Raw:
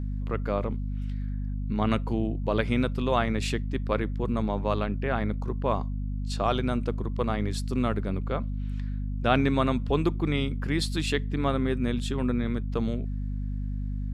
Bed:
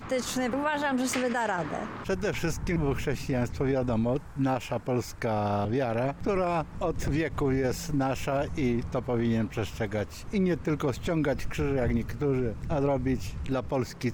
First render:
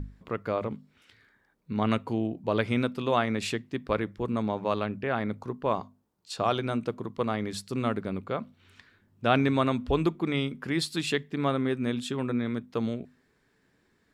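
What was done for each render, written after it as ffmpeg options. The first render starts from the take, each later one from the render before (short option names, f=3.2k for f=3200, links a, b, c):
-af "bandreject=f=50:t=h:w=6,bandreject=f=100:t=h:w=6,bandreject=f=150:t=h:w=6,bandreject=f=200:t=h:w=6,bandreject=f=250:t=h:w=6"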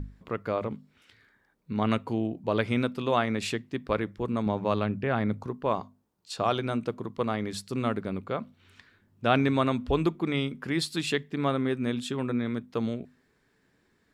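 -filter_complex "[0:a]asettb=1/sr,asplit=3[a][b][c];[a]atrim=end=4.464[d];[b]atrim=start=4.46:end=5.47,asetpts=PTS-STARTPTS,afade=t=in:d=0.004:c=qsin,afade=t=out:st=1.006:d=0.004:c=qsin,equalizer=f=110:w=0.55:g=6[e];[c]atrim=start=5.466[f];[d][e]acrossfade=d=0.004:c1=hsin:c2=qsin[g];[g][f]acrossfade=d=0.004:c1=qsin:c2=hsin"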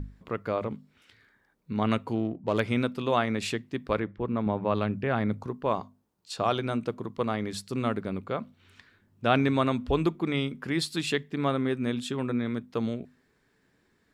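-filter_complex "[0:a]asettb=1/sr,asplit=3[a][b][c];[a]atrim=end=2.154[d];[b]atrim=start=2.15:end=2.6,asetpts=PTS-STARTPTS,afade=t=in:d=0.004:c=qsin,afade=t=out:st=0.446:d=0.004:c=qsin,adynamicsmooth=sensitivity=6:basefreq=1.6k[e];[c]atrim=start=2.596[f];[d][e]acrossfade=d=0.004:c1=hsin:c2=qsin[g];[g][f]acrossfade=d=0.004:c1=qsin:c2=hsin,asettb=1/sr,asplit=3[h][i][j];[h]atrim=end=4.004[k];[i]atrim=start=4:end=4.75,asetpts=PTS-STARTPTS,afade=t=in:d=0.004:c=qsin,afade=t=out:st=0.746:d=0.004:c=qsin,lowpass=2.7k[l];[j]atrim=start=4.746[m];[k][l]acrossfade=d=0.004:c1=hsin:c2=qsin[n];[n][m]acrossfade=d=0.004:c1=qsin:c2=hsin"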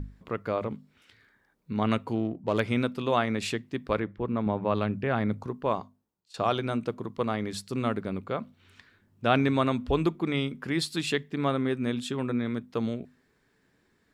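-filter_complex "[0:a]asplit=2[a][b];[a]atrim=end=6.34,asetpts=PTS-STARTPTS,afade=t=out:st=5.69:d=0.65:silence=0.0841395[c];[b]atrim=start=6.34,asetpts=PTS-STARTPTS,afade=t=in:d=0.004:c=hsin:silence=0.0841395[d];[c][d]concat=n=2:v=0:a=1"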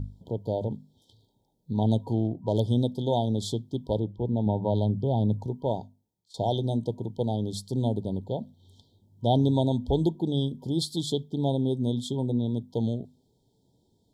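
-af "afftfilt=real='re*(1-between(b*sr/4096,960,3100))':imag='im*(1-between(b*sr/4096,960,3100))':win_size=4096:overlap=0.75,equalizer=f=110:w=1.5:g=8"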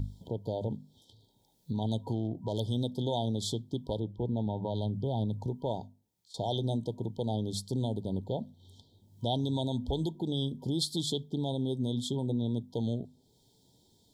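-filter_complex "[0:a]acrossover=split=1300[a][b];[a]alimiter=limit=-24dB:level=0:latency=1:release=161[c];[b]acompressor=mode=upward:threshold=-59dB:ratio=2.5[d];[c][d]amix=inputs=2:normalize=0"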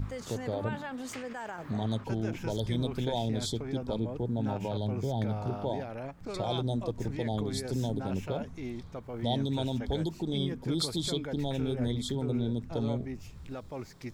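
-filter_complex "[1:a]volume=-11.5dB[a];[0:a][a]amix=inputs=2:normalize=0"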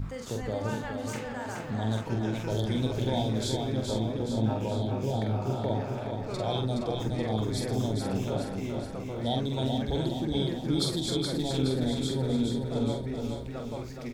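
-filter_complex "[0:a]asplit=2[a][b];[b]adelay=46,volume=-5dB[c];[a][c]amix=inputs=2:normalize=0,aecho=1:1:421|842|1263|1684|2105|2526|2947:0.562|0.315|0.176|0.0988|0.0553|0.031|0.0173"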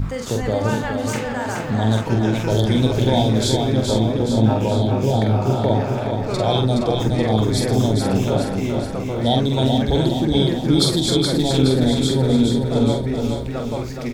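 -af "volume=11.5dB"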